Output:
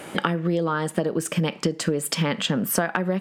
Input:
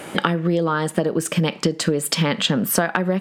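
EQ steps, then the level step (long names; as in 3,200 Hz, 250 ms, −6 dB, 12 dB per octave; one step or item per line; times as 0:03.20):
dynamic equaliser 4,000 Hz, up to −5 dB, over −41 dBFS, Q 3.3
−3.5 dB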